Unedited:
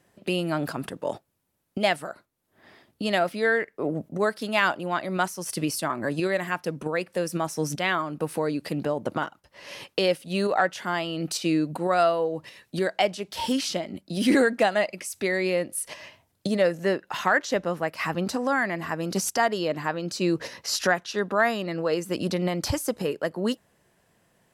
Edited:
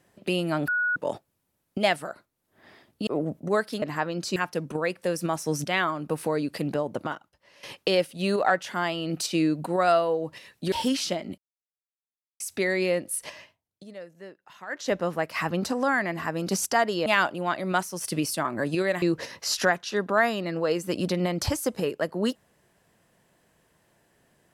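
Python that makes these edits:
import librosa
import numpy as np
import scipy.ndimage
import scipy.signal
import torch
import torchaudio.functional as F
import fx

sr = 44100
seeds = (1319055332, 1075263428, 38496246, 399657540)

y = fx.edit(x, sr, fx.bleep(start_s=0.68, length_s=0.28, hz=1460.0, db=-22.0),
    fx.cut(start_s=3.07, length_s=0.69),
    fx.swap(start_s=4.51, length_s=1.96, other_s=19.7, other_length_s=0.54),
    fx.fade_out_to(start_s=8.82, length_s=0.92, floor_db=-16.0),
    fx.cut(start_s=12.83, length_s=0.53),
    fx.silence(start_s=14.02, length_s=1.02),
    fx.fade_down_up(start_s=15.95, length_s=1.62, db=-19.5, fade_s=0.26), tone=tone)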